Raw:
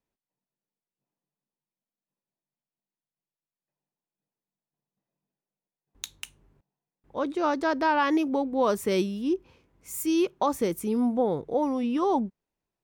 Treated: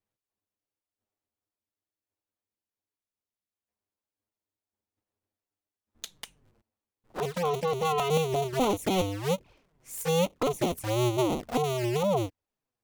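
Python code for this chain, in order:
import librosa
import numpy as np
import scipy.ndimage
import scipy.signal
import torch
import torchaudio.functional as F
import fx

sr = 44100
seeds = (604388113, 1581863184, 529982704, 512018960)

y = fx.cycle_switch(x, sr, every=2, mode='inverted')
y = fx.env_flanger(y, sr, rest_ms=9.7, full_db=-23.5)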